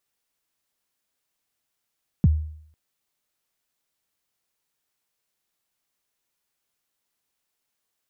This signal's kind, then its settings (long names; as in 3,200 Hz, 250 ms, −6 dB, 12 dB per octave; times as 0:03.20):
synth kick length 0.50 s, from 220 Hz, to 77 Hz, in 30 ms, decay 0.64 s, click off, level −10.5 dB